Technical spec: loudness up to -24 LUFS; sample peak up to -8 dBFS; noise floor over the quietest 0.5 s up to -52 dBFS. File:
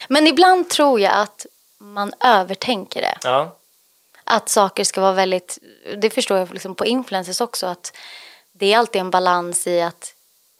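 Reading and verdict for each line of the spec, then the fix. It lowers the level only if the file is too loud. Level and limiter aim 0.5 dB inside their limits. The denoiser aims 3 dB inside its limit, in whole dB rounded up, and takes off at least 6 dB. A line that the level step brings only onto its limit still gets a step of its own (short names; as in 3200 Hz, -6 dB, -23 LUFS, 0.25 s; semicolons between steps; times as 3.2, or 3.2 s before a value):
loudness -18.0 LUFS: fail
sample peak -2.0 dBFS: fail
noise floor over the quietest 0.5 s -59 dBFS: OK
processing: gain -6.5 dB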